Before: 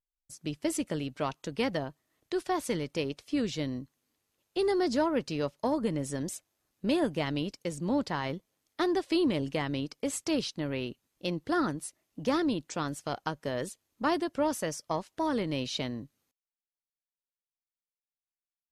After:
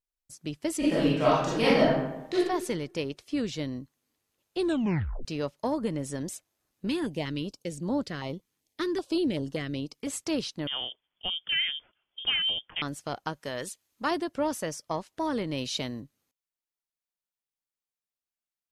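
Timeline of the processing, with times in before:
0:00.78–0:02.35: thrown reverb, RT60 0.95 s, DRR −9.5 dB
0:04.58: tape stop 0.67 s
0:06.87–0:10.07: notch on a step sequencer 5.2 Hz 610–2,400 Hz
0:10.67–0:12.82: voice inversion scrambler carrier 3,400 Hz
0:13.33–0:14.11: tilt shelving filter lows −4.5 dB
0:15.57–0:16.01: high-shelf EQ 6,100 Hz +9 dB

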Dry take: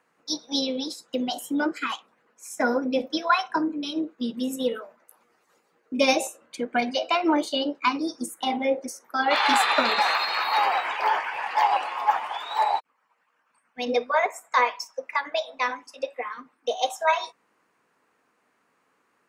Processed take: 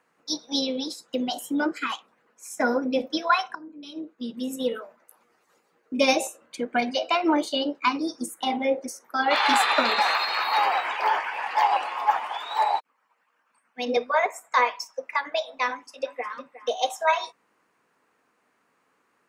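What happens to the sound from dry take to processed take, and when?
0:03.55–0:04.77: fade in, from −23 dB
0:09.59–0:13.97: high-pass filter 160 Hz 24 dB per octave
0:15.69–0:16.33: delay throw 360 ms, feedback 15%, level −14.5 dB

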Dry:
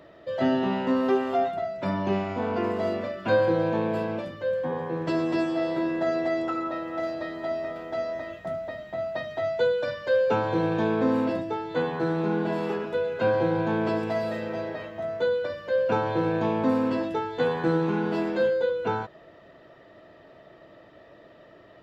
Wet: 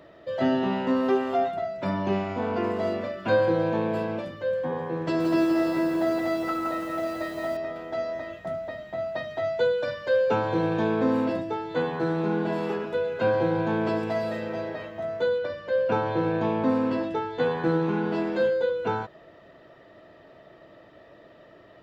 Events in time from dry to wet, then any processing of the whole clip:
0:05.03–0:07.57: feedback echo at a low word length 170 ms, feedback 55%, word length 8 bits, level −4 dB
0:15.38–0:18.32: high-frequency loss of the air 51 metres

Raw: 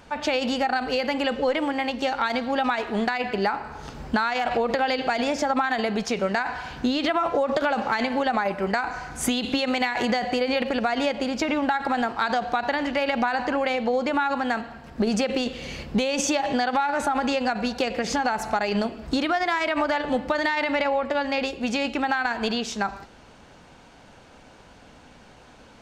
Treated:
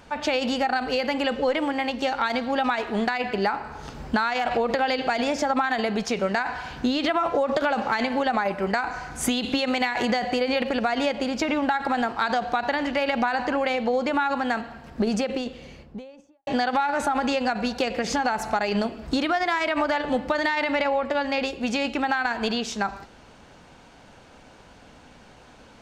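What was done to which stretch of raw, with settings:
0:14.81–0:16.47: fade out and dull

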